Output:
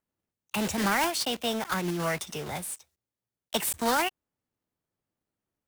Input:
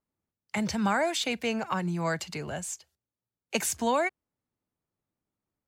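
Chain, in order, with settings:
one scale factor per block 3 bits
formants moved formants +4 semitones

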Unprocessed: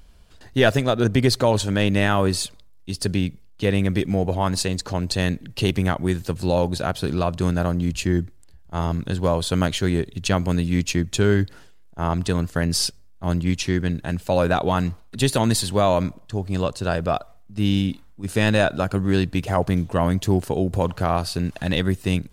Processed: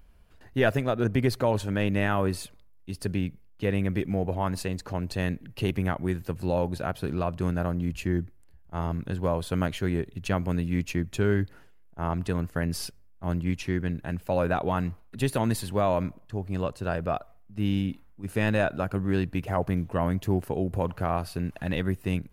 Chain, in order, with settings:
flat-topped bell 5,400 Hz −8.5 dB
level −6 dB

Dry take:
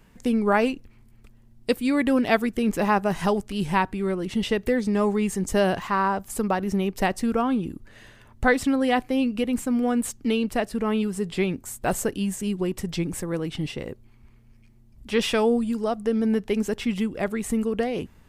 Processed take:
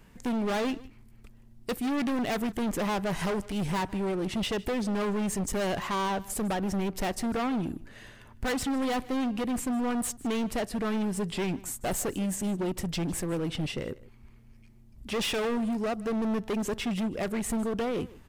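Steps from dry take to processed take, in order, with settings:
gain into a clipping stage and back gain 27 dB
single-tap delay 154 ms −20.5 dB

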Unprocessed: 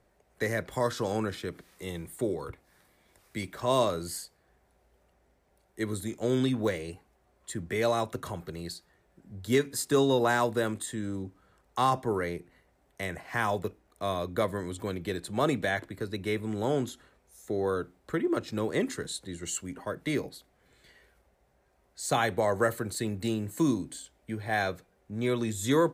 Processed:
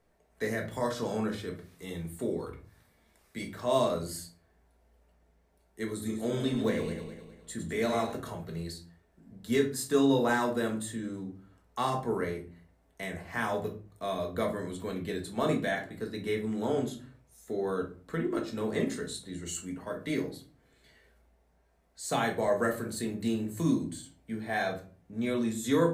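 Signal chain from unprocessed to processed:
0:05.91–0:08.12: feedback delay that plays each chunk backwards 103 ms, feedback 62%, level −8 dB
mains-hum notches 50/100/150 Hz
rectangular room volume 260 cubic metres, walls furnished, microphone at 1.6 metres
level −5 dB

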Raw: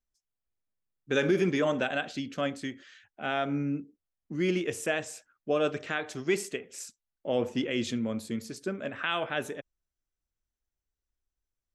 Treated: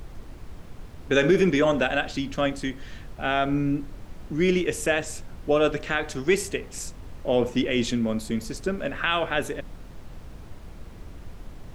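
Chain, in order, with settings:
background noise brown −44 dBFS
level +6 dB

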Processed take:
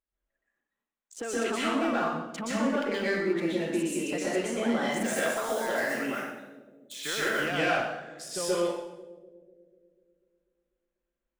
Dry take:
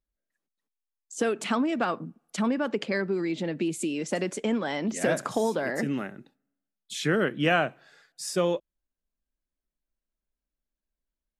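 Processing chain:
adaptive Wiener filter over 9 samples
0:04.89–0:07.38: RIAA equalisation recording
de-essing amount 75%
low-shelf EQ 320 Hz −10.5 dB
downward compressor 1.5 to 1, threshold −39 dBFS, peak gain reduction 7 dB
soft clipping −26 dBFS, distortion −18 dB
bucket-brigade delay 246 ms, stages 1,024, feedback 57%, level −15 dB
convolution reverb RT60 0.85 s, pre-delay 113 ms, DRR −8 dB

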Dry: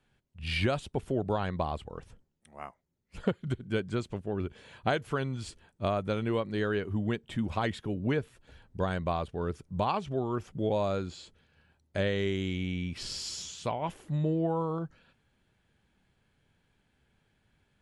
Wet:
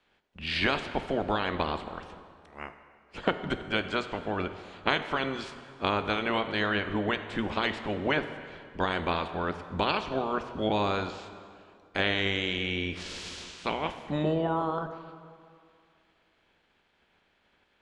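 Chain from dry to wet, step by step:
ceiling on every frequency bin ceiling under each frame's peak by 19 dB
low-pass filter 4,100 Hz 12 dB per octave
parametric band 120 Hz −14 dB 0.26 octaves
dense smooth reverb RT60 2.2 s, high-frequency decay 0.75×, DRR 9 dB
level +2 dB

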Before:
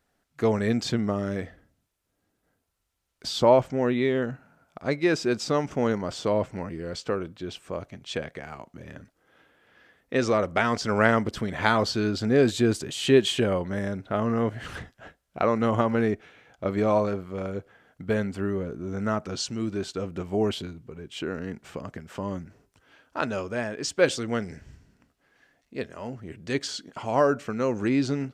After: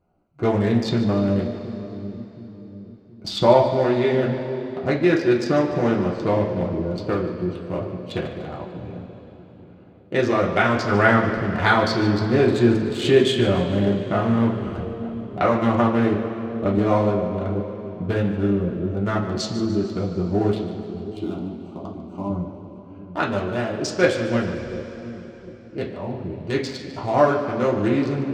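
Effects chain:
adaptive Wiener filter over 25 samples
in parallel at −1 dB: downward compressor, threshold −31 dBFS, peak gain reduction 16.5 dB
0:20.58–0:22.30: on the sum: phaser with its sweep stopped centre 470 Hz, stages 6
echo with a time of its own for lows and highs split 410 Hz, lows 723 ms, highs 148 ms, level −14 dB
convolution reverb RT60 3.7 s, pre-delay 3 ms, DRR −4 dB
level −1.5 dB

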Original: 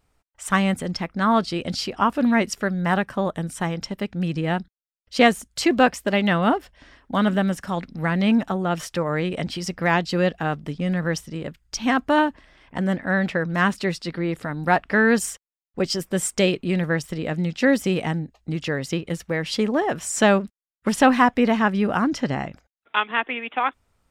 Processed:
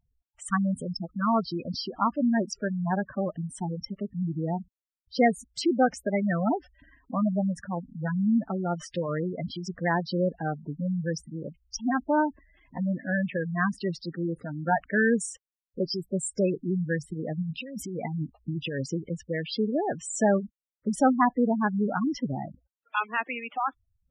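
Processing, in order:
0:17.42–0:18.90: compressor whose output falls as the input rises −27 dBFS, ratio −1
gate on every frequency bin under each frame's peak −10 dB strong
level −4.5 dB

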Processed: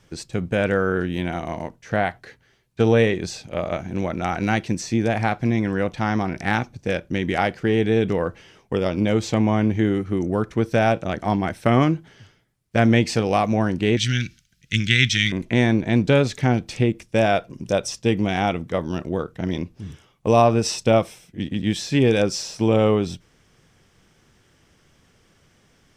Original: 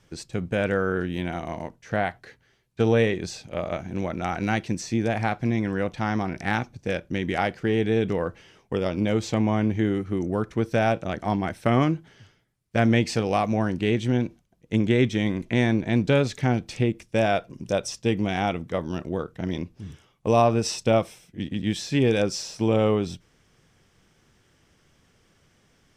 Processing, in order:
0:13.97–0:15.32: drawn EQ curve 140 Hz 0 dB, 590 Hz −23 dB, 990 Hz −22 dB, 1,400 Hz +6 dB, 5,200 Hz +15 dB, 10,000 Hz +6 dB
level +3.5 dB

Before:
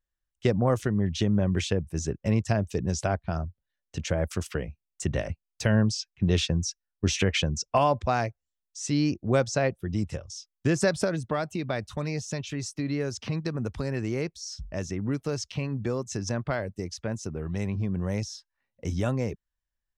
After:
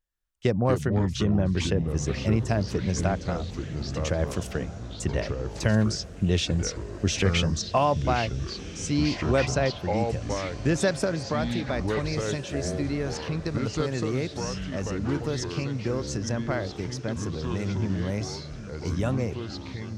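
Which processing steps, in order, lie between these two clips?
delay with pitch and tempo change per echo 122 ms, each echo −4 semitones, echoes 3, each echo −6 dB
feedback delay with all-pass diffusion 1,576 ms, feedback 41%, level −15 dB

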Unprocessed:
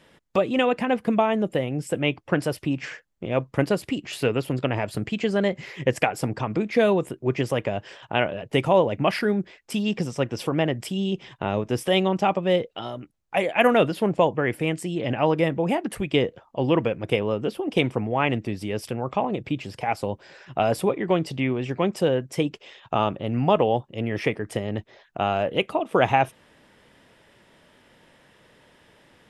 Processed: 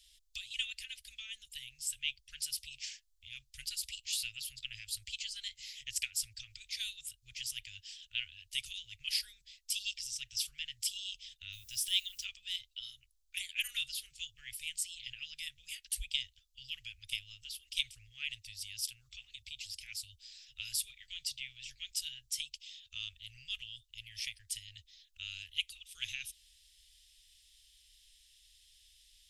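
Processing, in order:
inverse Chebyshev band-stop filter 180–1,000 Hz, stop band 70 dB
0:11.52–0:12.23: background noise violet −64 dBFS
level +4 dB

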